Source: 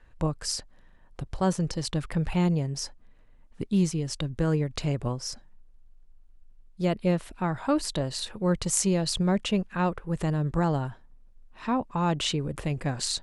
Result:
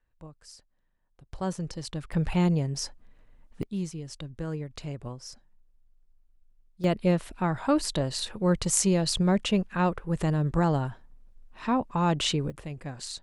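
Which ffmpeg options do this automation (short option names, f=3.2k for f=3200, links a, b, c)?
-af "asetnsamples=n=441:p=0,asendcmd='1.33 volume volume -6dB;2.13 volume volume 0.5dB;3.63 volume volume -8.5dB;6.84 volume volume 1dB;12.5 volume volume -8.5dB',volume=-19dB"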